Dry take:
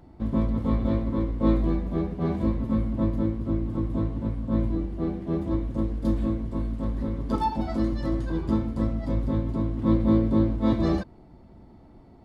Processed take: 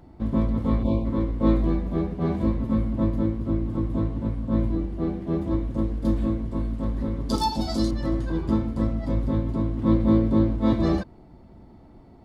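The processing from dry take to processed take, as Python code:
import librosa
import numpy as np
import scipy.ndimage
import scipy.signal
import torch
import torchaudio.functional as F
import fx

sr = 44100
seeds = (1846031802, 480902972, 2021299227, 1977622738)

y = fx.spec_box(x, sr, start_s=0.83, length_s=0.22, low_hz=1100.0, high_hz=2200.0, gain_db=-21)
y = fx.high_shelf_res(y, sr, hz=3200.0, db=13.5, q=1.5, at=(7.29, 7.91))
y = y * 10.0 ** (1.5 / 20.0)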